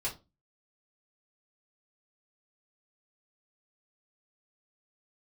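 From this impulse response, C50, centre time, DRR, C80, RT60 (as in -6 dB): 12.5 dB, 17 ms, -5.5 dB, 21.0 dB, 0.25 s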